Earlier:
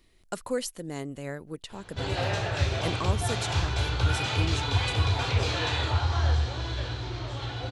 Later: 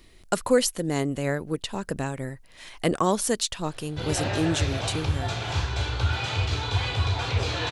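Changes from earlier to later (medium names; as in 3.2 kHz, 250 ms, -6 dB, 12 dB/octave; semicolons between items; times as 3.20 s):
speech +9.5 dB; background: entry +2.00 s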